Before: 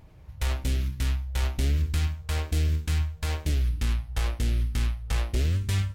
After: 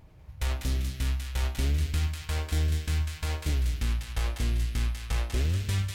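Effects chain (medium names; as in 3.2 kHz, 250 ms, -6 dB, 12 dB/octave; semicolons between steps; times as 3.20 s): thinning echo 196 ms, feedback 45%, high-pass 1.2 kHz, level -3.5 dB; trim -2 dB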